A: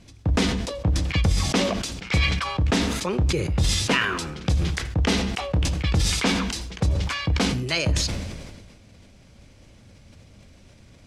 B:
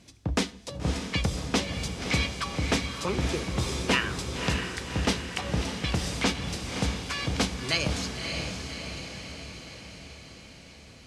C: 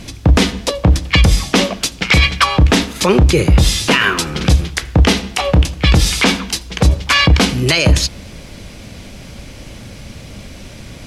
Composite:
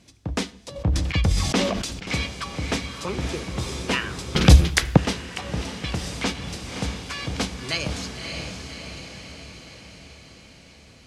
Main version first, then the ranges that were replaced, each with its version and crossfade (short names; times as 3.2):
B
0.76–2.07 from A
4.35–4.97 from C